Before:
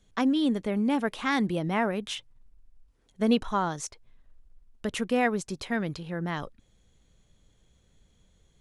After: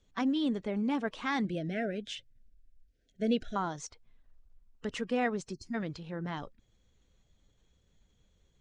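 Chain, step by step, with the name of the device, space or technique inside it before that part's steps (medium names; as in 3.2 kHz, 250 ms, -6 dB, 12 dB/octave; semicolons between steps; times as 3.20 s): clip after many re-uploads (low-pass 7.4 kHz 24 dB/octave; coarse spectral quantiser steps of 15 dB); 1.45–3.56 s: elliptic band-stop 680–1500 Hz, stop band 40 dB; 5.53–5.74 s: time-frequency box 370–4200 Hz -26 dB; trim -5 dB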